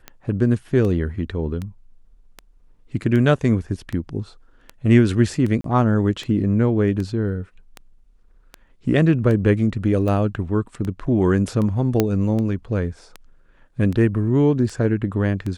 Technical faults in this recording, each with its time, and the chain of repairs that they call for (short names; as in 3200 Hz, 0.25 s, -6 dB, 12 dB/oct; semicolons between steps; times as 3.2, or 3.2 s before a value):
tick 78 rpm -17 dBFS
5.61–5.64 gap 33 ms
12 pop -4 dBFS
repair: de-click; interpolate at 5.61, 33 ms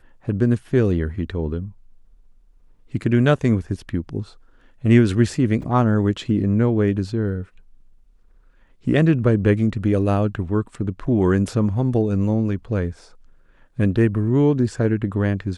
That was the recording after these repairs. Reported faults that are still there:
none